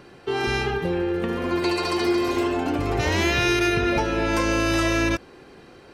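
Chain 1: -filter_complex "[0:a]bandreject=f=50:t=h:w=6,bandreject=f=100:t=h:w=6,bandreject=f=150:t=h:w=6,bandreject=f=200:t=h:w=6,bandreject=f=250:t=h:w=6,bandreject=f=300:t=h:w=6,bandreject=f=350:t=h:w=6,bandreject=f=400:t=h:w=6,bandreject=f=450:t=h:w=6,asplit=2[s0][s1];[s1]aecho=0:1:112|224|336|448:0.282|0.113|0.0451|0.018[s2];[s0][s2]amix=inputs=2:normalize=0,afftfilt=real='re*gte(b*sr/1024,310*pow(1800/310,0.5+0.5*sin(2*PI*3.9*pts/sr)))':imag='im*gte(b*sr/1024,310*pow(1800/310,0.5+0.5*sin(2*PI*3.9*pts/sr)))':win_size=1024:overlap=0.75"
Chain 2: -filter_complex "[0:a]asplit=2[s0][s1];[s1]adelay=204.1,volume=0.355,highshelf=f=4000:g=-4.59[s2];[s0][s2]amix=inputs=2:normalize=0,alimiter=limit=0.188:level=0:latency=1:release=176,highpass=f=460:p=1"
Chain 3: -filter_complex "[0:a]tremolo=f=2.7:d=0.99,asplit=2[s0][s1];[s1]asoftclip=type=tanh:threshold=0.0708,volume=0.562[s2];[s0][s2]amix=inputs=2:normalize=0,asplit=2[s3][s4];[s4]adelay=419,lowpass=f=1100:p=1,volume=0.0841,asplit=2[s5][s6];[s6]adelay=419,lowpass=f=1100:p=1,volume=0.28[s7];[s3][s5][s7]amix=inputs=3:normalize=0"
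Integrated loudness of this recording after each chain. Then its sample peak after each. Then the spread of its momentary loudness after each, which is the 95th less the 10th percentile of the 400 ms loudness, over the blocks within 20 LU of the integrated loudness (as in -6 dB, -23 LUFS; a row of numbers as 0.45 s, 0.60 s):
-26.5 LUFS, -26.5 LUFS, -24.5 LUFS; -12.5 dBFS, -13.5 dBFS, -11.0 dBFS; 11 LU, 5 LU, 5 LU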